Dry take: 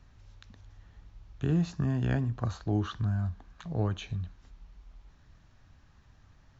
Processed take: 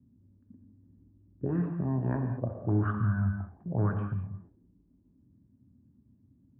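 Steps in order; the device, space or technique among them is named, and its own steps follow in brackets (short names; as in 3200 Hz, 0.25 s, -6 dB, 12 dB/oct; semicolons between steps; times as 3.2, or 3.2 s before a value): 2.65–4.22 tone controls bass +7 dB, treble -7 dB; envelope filter bass rig (envelope low-pass 240–1400 Hz up, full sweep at -22 dBFS; speaker cabinet 89–2300 Hz, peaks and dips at 100 Hz -6 dB, 150 Hz -7 dB, 240 Hz -3 dB, 460 Hz -5 dB, 730 Hz -9 dB, 1300 Hz -6 dB); non-linear reverb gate 0.24 s flat, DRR 4.5 dB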